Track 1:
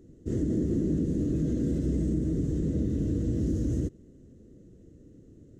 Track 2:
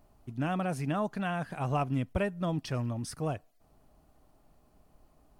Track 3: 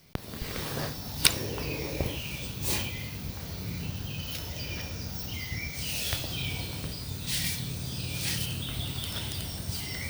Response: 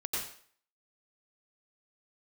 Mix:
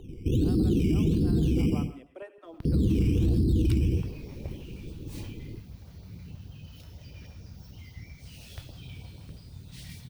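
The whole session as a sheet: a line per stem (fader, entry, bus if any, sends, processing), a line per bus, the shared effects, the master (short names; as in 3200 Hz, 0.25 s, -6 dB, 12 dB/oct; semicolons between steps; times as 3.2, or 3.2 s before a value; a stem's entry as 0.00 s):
+1.0 dB, 0.00 s, muted 1.7–2.65, send -4.5 dB, spectral gate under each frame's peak -20 dB strong; bell 800 Hz +12.5 dB 0.59 oct; decimation with a swept rate 13×, swing 60% 1.4 Hz
-12.5 dB, 0.00 s, send -14.5 dB, steep high-pass 280 Hz 96 dB/oct
-13.5 dB, 2.45 s, no send, dry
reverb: on, RT60 0.50 s, pre-delay 84 ms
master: tilt -2 dB/oct; LFO notch saw up 6.3 Hz 200–2400 Hz; limiter -17 dBFS, peak gain reduction 10 dB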